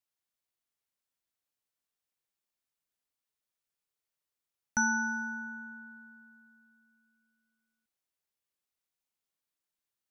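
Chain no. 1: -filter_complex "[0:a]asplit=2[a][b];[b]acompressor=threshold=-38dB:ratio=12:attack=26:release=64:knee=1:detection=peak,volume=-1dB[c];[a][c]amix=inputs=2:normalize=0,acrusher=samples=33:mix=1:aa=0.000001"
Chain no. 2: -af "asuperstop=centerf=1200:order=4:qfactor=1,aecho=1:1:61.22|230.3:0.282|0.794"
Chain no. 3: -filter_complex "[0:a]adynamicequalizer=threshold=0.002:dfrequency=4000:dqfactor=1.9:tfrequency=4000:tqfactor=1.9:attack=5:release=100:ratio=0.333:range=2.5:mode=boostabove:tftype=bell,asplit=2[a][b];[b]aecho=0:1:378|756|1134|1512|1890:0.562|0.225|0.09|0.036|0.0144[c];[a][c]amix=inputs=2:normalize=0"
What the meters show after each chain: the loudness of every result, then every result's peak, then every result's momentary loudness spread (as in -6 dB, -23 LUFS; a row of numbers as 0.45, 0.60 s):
-32.0, -35.0, -32.0 LUFS; -15.0, -20.5, -17.0 dBFS; 19, 20, 19 LU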